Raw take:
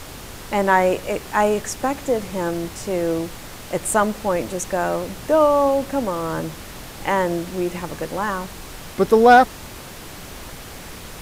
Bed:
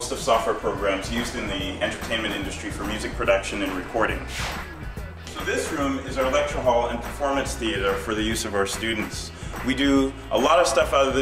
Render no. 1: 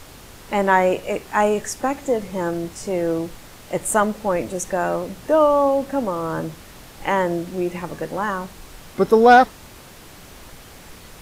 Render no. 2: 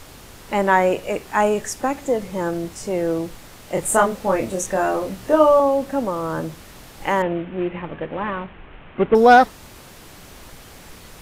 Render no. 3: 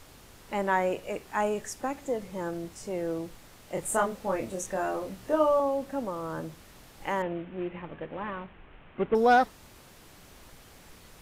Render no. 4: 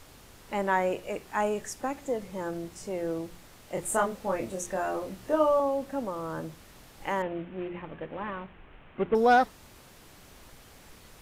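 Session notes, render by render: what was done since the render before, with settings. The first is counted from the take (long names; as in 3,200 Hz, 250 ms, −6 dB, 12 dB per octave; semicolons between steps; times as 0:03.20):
noise reduction from a noise print 6 dB
0:03.74–0:05.60: double-tracking delay 26 ms −3 dB; 0:07.22–0:09.15: variable-slope delta modulation 16 kbit/s
level −10 dB
hum removal 174.8 Hz, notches 2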